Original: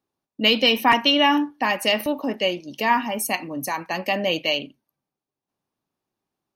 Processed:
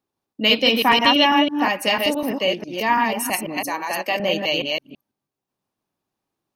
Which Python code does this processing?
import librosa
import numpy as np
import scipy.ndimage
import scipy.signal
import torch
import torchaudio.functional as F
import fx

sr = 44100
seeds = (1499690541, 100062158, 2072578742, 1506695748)

y = fx.reverse_delay(x, sr, ms=165, wet_db=-2)
y = fx.highpass(y, sr, hz=290.0, slope=12, at=(3.57, 4.2))